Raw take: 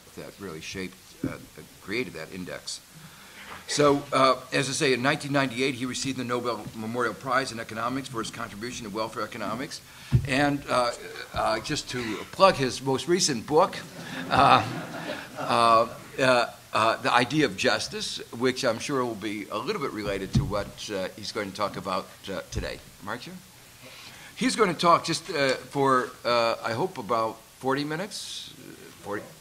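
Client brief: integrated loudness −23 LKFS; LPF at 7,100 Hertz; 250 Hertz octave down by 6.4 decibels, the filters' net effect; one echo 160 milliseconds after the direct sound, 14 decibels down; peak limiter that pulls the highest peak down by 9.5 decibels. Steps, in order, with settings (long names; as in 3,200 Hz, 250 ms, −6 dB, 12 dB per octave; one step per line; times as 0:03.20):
low-pass filter 7,100 Hz
parametric band 250 Hz −8.5 dB
brickwall limiter −13.5 dBFS
single-tap delay 160 ms −14 dB
level +6.5 dB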